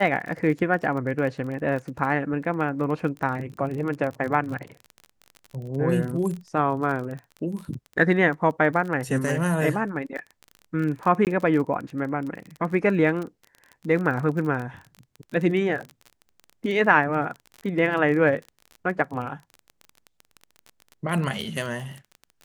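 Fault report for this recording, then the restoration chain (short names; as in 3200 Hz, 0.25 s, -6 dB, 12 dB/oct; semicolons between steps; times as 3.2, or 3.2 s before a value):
crackle 29/s -31 dBFS
11.25–11.27 gap 18 ms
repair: de-click; interpolate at 11.25, 18 ms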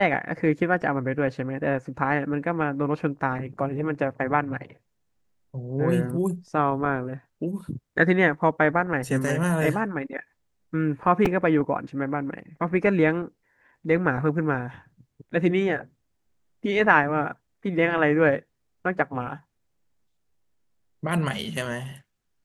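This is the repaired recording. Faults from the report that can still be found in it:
none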